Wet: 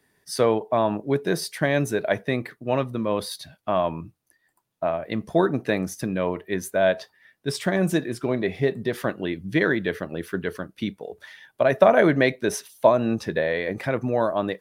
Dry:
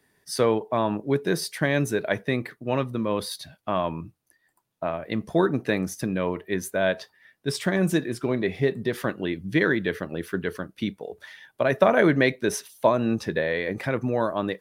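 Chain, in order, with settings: dynamic bell 670 Hz, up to +5 dB, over -37 dBFS, Q 2.5

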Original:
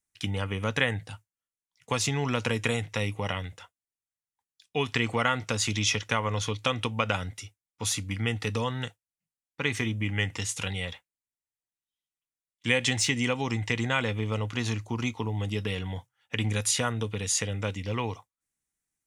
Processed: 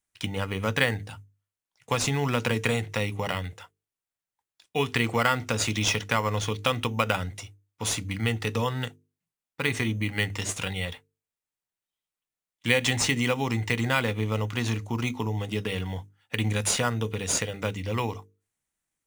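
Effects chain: hum notches 50/100/150/200/250/300/350/400/450 Hz; in parallel at -8.5 dB: sample-rate reducer 6.3 kHz, jitter 0%

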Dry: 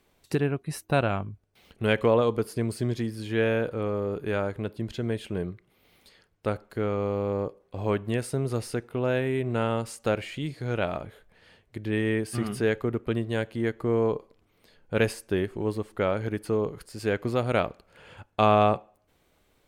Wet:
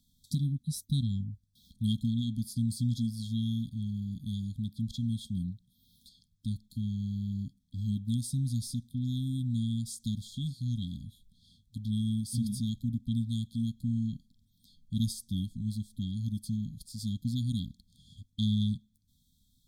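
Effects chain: brick-wall FIR band-stop 270–3200 Hz

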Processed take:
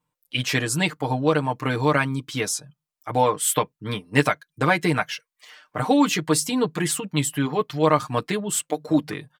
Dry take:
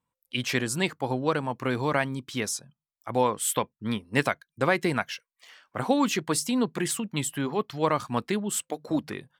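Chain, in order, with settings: comb 6.6 ms, depth 83%; trim +2.5 dB

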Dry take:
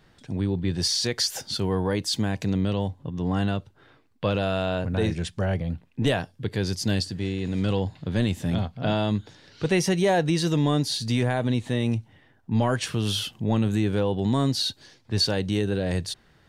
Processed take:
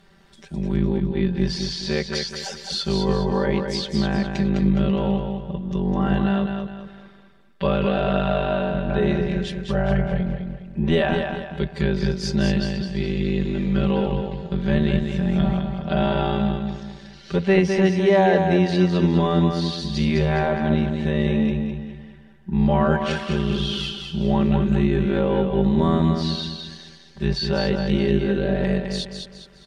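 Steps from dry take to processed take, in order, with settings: low-pass that closes with the level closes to 2.8 kHz, closed at -22 dBFS; granular stretch 1.8×, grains 23 ms; feedback delay 207 ms, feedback 38%, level -5.5 dB; trim +4.5 dB

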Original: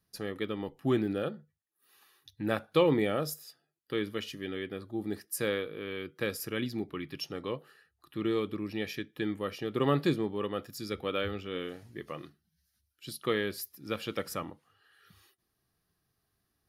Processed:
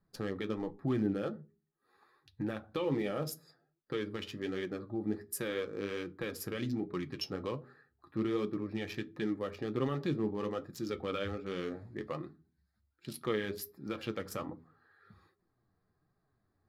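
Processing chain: local Wiener filter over 15 samples; treble shelf 10 kHz -4.5 dB; de-hum 81.51 Hz, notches 5; in parallel at +3 dB: compression, threshold -39 dBFS, peak gain reduction 18 dB; on the sum: peak limiter -20.5 dBFS, peak gain reduction 10 dB; flange 1.3 Hz, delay 4.7 ms, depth 6.5 ms, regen +45%; on a send at -13.5 dB: reverberation, pre-delay 4 ms

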